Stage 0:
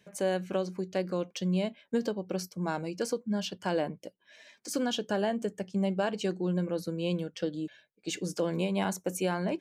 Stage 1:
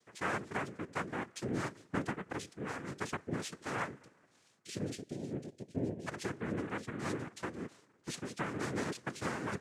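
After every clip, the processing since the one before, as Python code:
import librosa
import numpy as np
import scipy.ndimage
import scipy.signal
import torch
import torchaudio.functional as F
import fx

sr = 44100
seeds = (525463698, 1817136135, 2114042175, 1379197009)

y = fx.spec_erase(x, sr, start_s=3.99, length_s=2.08, low_hz=280.0, high_hz=3900.0)
y = fx.rev_double_slope(y, sr, seeds[0], early_s=0.26, late_s=2.6, knee_db=-18, drr_db=14.5)
y = fx.noise_vocoder(y, sr, seeds[1], bands=3)
y = y * 10.0 ** (-7.0 / 20.0)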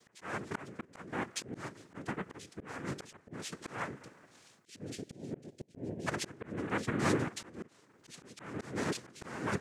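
y = fx.auto_swell(x, sr, attack_ms=433.0)
y = y * 10.0 ** (8.0 / 20.0)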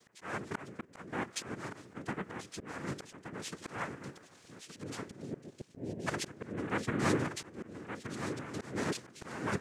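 y = x + 10.0 ** (-8.5 / 20.0) * np.pad(x, (int(1171 * sr / 1000.0), 0))[:len(x)]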